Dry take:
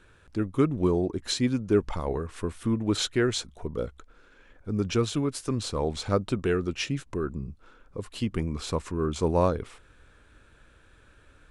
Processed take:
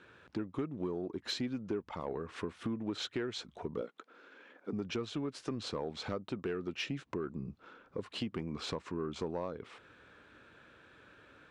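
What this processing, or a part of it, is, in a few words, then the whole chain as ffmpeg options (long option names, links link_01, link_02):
AM radio: -filter_complex "[0:a]highpass=160,lowpass=4200,acompressor=threshold=-35dB:ratio=6,asoftclip=type=tanh:threshold=-25.5dB,asettb=1/sr,asplit=3[link_01][link_02][link_03];[link_01]atrim=end=3.814[link_04];[link_02]atrim=start=3.81:end=4.73,asetpts=PTS-STARTPTS,afade=type=in:duration=0.004:curve=qsin,afade=type=out:start_time=0.916:duration=0.004:curve=qsin,highpass=frequency=220:width=0.5412,highpass=frequency=220:width=1.3066[link_05];[link_03]atrim=start=4.726[link_06];[link_04][link_05]acrossfade=duration=0.004:curve1=hsin:curve2=qsin[link_07];[link_07][link_06]acrossfade=duration=0.004:curve1=qsin:curve2=hsin,volume=1.5dB"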